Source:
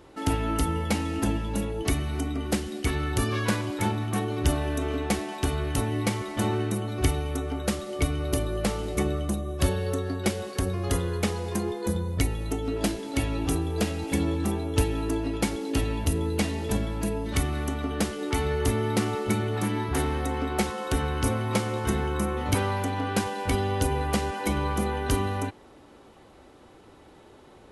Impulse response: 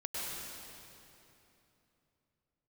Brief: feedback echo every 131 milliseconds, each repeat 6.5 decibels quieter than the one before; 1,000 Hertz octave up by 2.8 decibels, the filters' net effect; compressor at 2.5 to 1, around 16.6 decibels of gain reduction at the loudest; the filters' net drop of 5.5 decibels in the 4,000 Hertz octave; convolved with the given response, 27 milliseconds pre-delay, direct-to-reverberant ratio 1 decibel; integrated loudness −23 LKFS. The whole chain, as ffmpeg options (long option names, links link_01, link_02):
-filter_complex "[0:a]equalizer=frequency=1000:width_type=o:gain=4,equalizer=frequency=4000:width_type=o:gain=-8,acompressor=threshold=-44dB:ratio=2.5,aecho=1:1:131|262|393|524|655|786:0.473|0.222|0.105|0.0491|0.0231|0.0109,asplit=2[link_01][link_02];[1:a]atrim=start_sample=2205,adelay=27[link_03];[link_02][link_03]afir=irnorm=-1:irlink=0,volume=-4.5dB[link_04];[link_01][link_04]amix=inputs=2:normalize=0,volume=14.5dB"